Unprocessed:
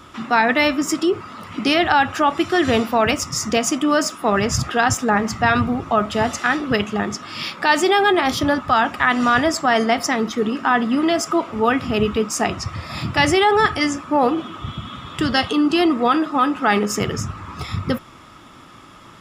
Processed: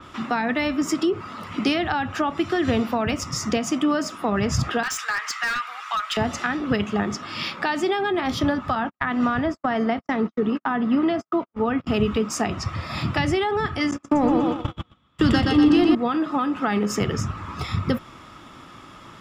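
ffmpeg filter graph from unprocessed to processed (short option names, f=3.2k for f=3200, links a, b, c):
-filter_complex "[0:a]asettb=1/sr,asplit=3[a][b][c];[a]atrim=end=4.834[d];[b]atrim=start=4.83:end=6.17,asetpts=PTS-STARTPTS,afade=t=in:d=0.004:c=qsin,afade=t=out:st=1.336:d=0.004:c=qsin,highpass=f=1.3k:w=0.5412,highpass=f=1.3k:w=1.3066,acontrast=82,asoftclip=type=hard:threshold=-16dB[e];[c]atrim=start=6.166[f];[d][e]acrossfade=d=0.004:c1=hsin:c2=qsin[g];[g][f]acrossfade=d=0.004:c1=qsin:c2=hsin,asettb=1/sr,asplit=3[h][i][j];[h]atrim=end=8.754[k];[i]atrim=start=8.75:end=11.87,asetpts=PTS-STARTPTS,afade=t=in:d=0.004:c=qsin,afade=t=out:st=3.116:d=0.004:c=qsin,lowpass=f=2.1k:p=1,agate=range=-58dB:threshold=-25dB:ratio=16:release=100:detection=peak[l];[j]atrim=start=11.866[m];[k][l]acrossfade=d=0.004:c1=hsin:c2=qsin[n];[n][m]acrossfade=d=0.004:c1=qsin:c2=hsin,asettb=1/sr,asplit=3[o][p][q];[o]atrim=end=13.914[r];[p]atrim=start=13.91:end=15.95,asetpts=PTS-STARTPTS,afade=t=in:d=0.004:c=qsin,afade=t=out:st=2.036:d=0.004:c=qsin,aecho=1:1:121|242|363|484|605|726|847:0.668|0.348|0.181|0.094|0.0489|0.0254|0.0132,atrim=end_sample=89964,acontrast=47,agate=range=-38dB:threshold=-19dB:ratio=16:release=100:detection=peak[s];[q]atrim=start=15.946[t];[r][s]acrossfade=d=0.004:c1=hsin:c2=qsin[u];[u][t]acrossfade=d=0.004:c1=qsin:c2=hsin,equalizer=f=11k:w=0.77:g=-4.5,acrossover=split=270[v][w];[w]acompressor=threshold=-22dB:ratio=6[x];[v][x]amix=inputs=2:normalize=0,adynamicequalizer=threshold=0.01:dfrequency=4900:dqfactor=0.7:tfrequency=4900:tqfactor=0.7:attack=5:release=100:ratio=0.375:range=2:mode=cutabove:tftype=highshelf"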